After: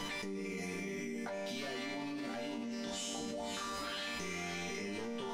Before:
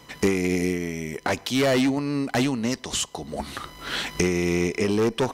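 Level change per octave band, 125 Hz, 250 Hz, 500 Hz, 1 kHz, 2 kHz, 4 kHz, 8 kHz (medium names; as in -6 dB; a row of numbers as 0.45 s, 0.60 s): -20.0 dB, -17.0 dB, -16.5 dB, -12.0 dB, -12.0 dB, -11.5 dB, -13.0 dB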